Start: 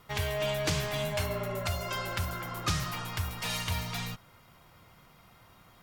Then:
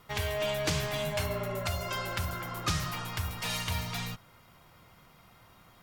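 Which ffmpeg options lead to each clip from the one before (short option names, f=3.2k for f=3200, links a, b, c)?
-af "bandreject=f=46.95:t=h:w=4,bandreject=f=93.9:t=h:w=4,bandreject=f=140.85:t=h:w=4"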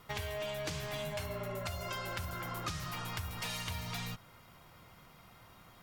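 -af "acompressor=threshold=-36dB:ratio=6"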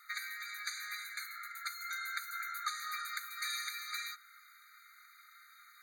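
-af "afftfilt=real='re*eq(mod(floor(b*sr/1024/1200),2),1)':imag='im*eq(mod(floor(b*sr/1024/1200),2),1)':win_size=1024:overlap=0.75,volume=4.5dB"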